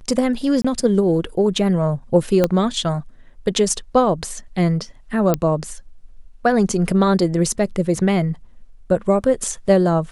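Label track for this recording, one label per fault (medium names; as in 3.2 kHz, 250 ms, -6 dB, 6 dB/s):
0.620000	0.650000	dropout 25 ms
2.440000	2.440000	pop -4 dBFS
5.340000	5.340000	pop -5 dBFS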